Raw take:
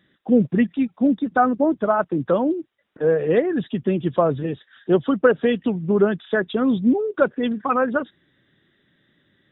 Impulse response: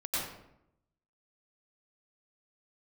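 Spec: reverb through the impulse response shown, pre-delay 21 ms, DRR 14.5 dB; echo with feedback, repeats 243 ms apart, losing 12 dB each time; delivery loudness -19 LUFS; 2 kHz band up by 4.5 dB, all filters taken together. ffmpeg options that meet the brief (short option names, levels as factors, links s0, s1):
-filter_complex "[0:a]equalizer=f=2000:t=o:g=6.5,aecho=1:1:243|486|729:0.251|0.0628|0.0157,asplit=2[s0][s1];[1:a]atrim=start_sample=2205,adelay=21[s2];[s1][s2]afir=irnorm=-1:irlink=0,volume=0.1[s3];[s0][s3]amix=inputs=2:normalize=0,volume=1.12"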